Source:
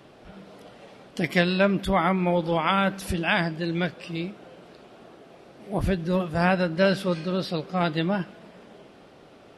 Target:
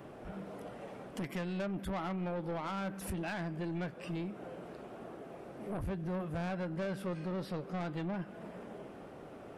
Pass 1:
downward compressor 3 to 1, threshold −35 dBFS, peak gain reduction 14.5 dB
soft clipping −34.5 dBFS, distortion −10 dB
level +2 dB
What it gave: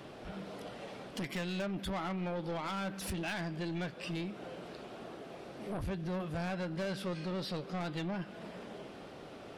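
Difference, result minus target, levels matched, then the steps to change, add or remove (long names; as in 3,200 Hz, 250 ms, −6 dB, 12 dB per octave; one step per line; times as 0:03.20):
4,000 Hz band +7.5 dB
add after downward compressor: parametric band 4,200 Hz −12.5 dB 1.5 octaves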